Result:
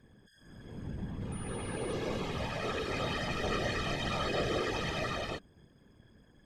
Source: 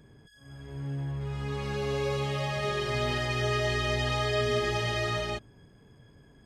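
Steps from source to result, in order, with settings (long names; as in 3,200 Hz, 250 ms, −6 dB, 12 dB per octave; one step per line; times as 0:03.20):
random phases in short frames
0:01.32–0:01.93: switching amplifier with a slow clock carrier 9,600 Hz
level −5 dB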